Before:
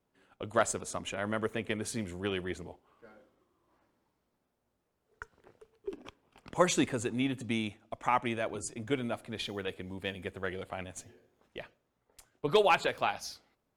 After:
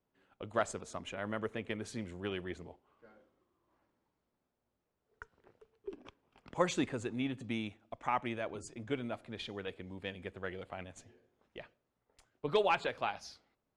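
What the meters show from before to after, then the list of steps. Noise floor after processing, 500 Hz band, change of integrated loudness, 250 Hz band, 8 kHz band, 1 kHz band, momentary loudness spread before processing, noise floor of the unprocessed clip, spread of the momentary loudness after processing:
−85 dBFS, −4.5 dB, −5.0 dB, −4.5 dB, −10.5 dB, −5.0 dB, 20 LU, −80 dBFS, 20 LU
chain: high-frequency loss of the air 69 metres
level −4.5 dB

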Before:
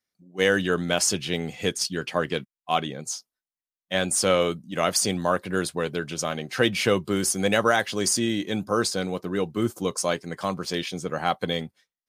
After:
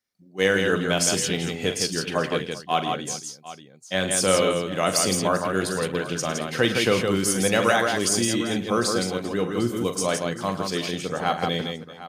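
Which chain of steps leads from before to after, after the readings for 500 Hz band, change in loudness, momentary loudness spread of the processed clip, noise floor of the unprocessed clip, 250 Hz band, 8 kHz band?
+1.5 dB, +2.0 dB, 8 LU, below −85 dBFS, +2.0 dB, +2.0 dB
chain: multi-tap delay 42/106/164/392/753 ms −10/−15/−4.5/−18/−15.5 dB

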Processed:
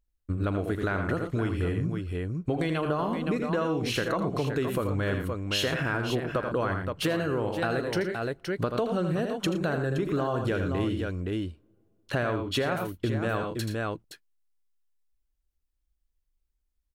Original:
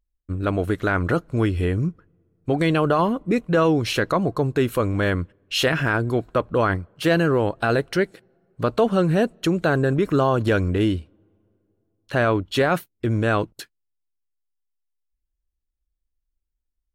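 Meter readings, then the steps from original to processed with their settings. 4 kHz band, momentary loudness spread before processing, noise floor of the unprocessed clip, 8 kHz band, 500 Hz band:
−4.5 dB, 7 LU, −79 dBFS, −4.0 dB, −7.0 dB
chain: multi-tap delay 40/81/114/519 ms −19/−7/−13/−9.5 dB
downward compressor 6 to 1, threshold −25 dBFS, peak gain reduction 12 dB

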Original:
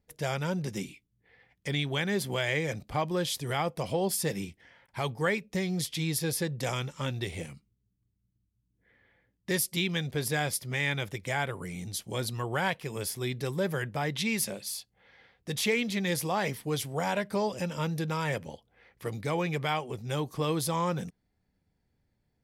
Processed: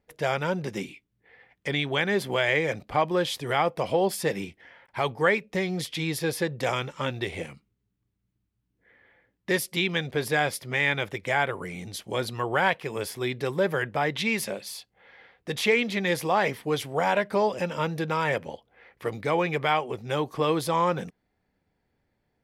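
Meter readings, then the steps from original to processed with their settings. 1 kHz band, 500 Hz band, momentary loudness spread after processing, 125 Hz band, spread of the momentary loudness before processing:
+7.0 dB, +6.0 dB, 12 LU, −1.0 dB, 8 LU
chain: bass and treble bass −9 dB, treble −11 dB
level +7 dB

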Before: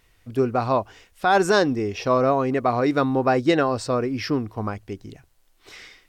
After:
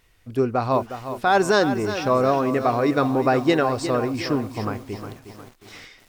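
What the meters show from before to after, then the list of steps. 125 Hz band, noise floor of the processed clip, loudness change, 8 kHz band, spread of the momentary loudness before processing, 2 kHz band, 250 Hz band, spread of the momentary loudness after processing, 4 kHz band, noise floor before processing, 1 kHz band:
+0.5 dB, −58 dBFS, +0.5 dB, +0.5 dB, 11 LU, +0.5 dB, +0.5 dB, 13 LU, +0.5 dB, −61 dBFS, +0.5 dB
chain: feedback echo at a low word length 360 ms, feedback 55%, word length 7 bits, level −10 dB

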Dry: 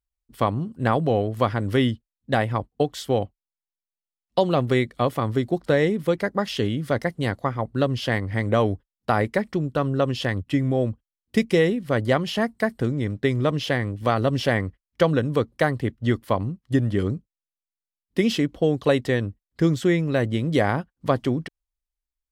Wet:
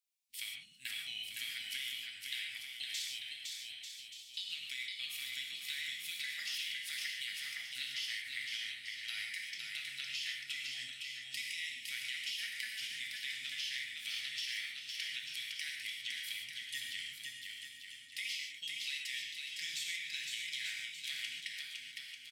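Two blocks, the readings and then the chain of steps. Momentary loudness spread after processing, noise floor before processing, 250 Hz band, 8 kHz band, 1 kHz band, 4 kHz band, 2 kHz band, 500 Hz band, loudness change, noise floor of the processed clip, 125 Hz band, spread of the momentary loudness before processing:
5 LU, below −85 dBFS, below −40 dB, 0.0 dB, below −40 dB, −2.0 dB, −9.5 dB, below −40 dB, −16.0 dB, −53 dBFS, below −40 dB, 6 LU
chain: elliptic high-pass filter 2,200 Hz, stop band 50 dB
brickwall limiter −24.5 dBFS, peak gain reduction 7 dB
downward compressor, threshold −44 dBFS, peak gain reduction 12 dB
on a send: bouncing-ball delay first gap 510 ms, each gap 0.75×, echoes 5
on the sum: reverb whose tail is shaped and stops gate 170 ms flat, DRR 0 dB
level +3.5 dB

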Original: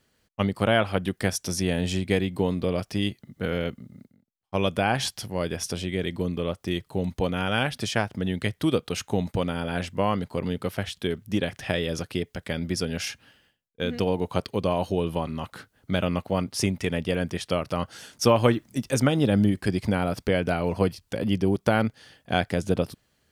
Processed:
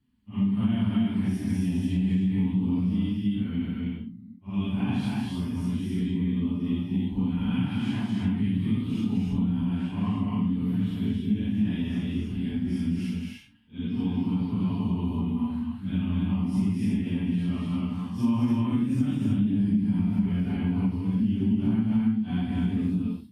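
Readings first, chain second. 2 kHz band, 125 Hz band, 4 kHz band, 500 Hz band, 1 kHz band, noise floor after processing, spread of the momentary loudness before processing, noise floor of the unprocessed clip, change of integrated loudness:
−13.0 dB, +1.0 dB, −11.5 dB, −17.5 dB, −12.5 dB, −41 dBFS, 8 LU, −71 dBFS, −0.5 dB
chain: random phases in long frames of 200 ms
drawn EQ curve 110 Hz 0 dB, 160 Hz +4 dB, 250 Hz +7 dB, 530 Hz −27 dB, 960 Hz −8 dB, 1,400 Hz −17 dB, 2,900 Hz −9 dB, 6,200 Hz −23 dB, 8,900 Hz −16 dB
reverb whose tail is shaped and stops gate 330 ms rising, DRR −0.5 dB
downward compressor, threshold −20 dBFS, peak gain reduction 9 dB
notch comb filter 160 Hz

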